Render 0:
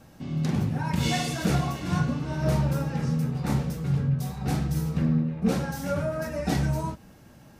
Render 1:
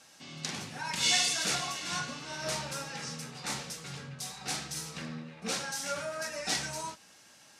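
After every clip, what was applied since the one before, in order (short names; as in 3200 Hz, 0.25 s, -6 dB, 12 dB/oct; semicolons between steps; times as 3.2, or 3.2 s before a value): weighting filter ITU-R 468; gain -4 dB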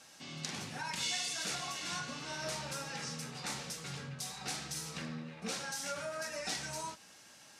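compressor 2.5:1, threshold -38 dBFS, peak gain reduction 10.5 dB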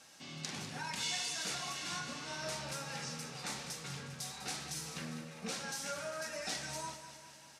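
feedback echo 0.2 s, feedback 58%, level -11 dB; gain -1.5 dB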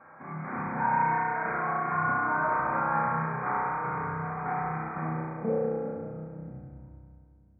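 low-pass sweep 1200 Hz -> 100 Hz, 4.88–6.76; brick-wall FIR low-pass 2500 Hz; reverb RT60 2.2 s, pre-delay 31 ms, DRR -5 dB; gain +6.5 dB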